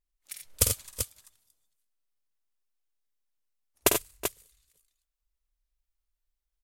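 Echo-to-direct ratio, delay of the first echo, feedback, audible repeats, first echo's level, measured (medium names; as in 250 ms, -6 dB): -2.0 dB, 50 ms, no regular repeats, 3, -6.5 dB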